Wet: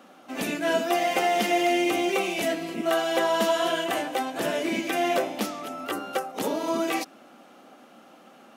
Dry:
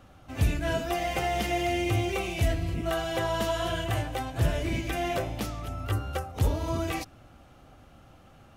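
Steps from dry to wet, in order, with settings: elliptic high-pass 210 Hz, stop band 80 dB; trim +6 dB

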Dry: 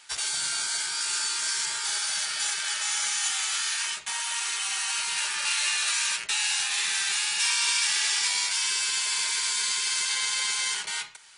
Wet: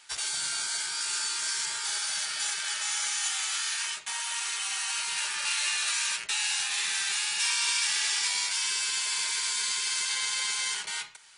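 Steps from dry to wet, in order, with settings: 2.91–5.08 s: bass shelf 100 Hz -11 dB; trim -2.5 dB

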